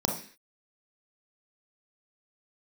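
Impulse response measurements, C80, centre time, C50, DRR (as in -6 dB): 12.0 dB, 25 ms, 6.0 dB, 1.5 dB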